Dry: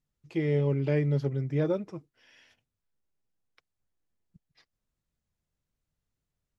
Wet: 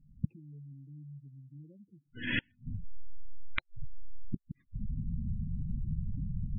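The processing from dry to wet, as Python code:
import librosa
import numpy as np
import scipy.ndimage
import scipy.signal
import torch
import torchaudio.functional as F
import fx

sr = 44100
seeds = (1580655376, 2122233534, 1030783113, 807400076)

y = scipy.signal.medfilt(x, 9)
y = fx.recorder_agc(y, sr, target_db=-25.0, rise_db_per_s=52.0, max_gain_db=30)
y = fx.low_shelf_res(y, sr, hz=330.0, db=12.0, q=1.5)
y = fx.gate_flip(y, sr, shuts_db=-26.0, range_db=-42)
y = fx.spec_gate(y, sr, threshold_db=-15, keep='strong')
y = y * librosa.db_to_amplitude(8.0)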